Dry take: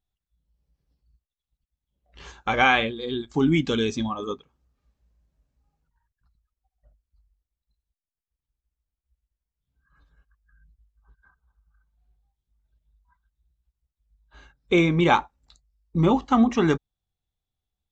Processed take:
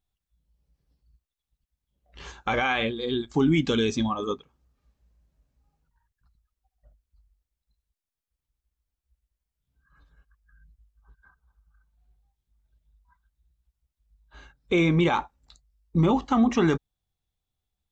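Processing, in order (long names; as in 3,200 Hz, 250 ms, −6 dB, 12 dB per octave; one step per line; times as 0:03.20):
brickwall limiter −15 dBFS, peak gain reduction 10 dB
level +1.5 dB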